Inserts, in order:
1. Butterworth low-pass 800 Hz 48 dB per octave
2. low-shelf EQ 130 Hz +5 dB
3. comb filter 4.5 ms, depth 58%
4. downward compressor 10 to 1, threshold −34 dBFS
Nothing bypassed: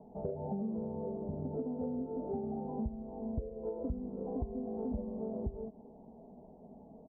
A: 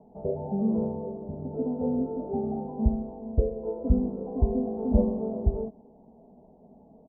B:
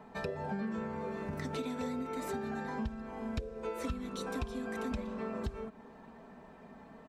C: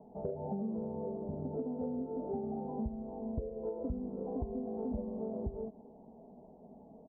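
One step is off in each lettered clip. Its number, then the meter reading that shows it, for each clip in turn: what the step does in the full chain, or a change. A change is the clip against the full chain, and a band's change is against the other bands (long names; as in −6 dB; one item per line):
4, average gain reduction 7.5 dB
1, 1 kHz band +6.5 dB
2, 125 Hz band −1.5 dB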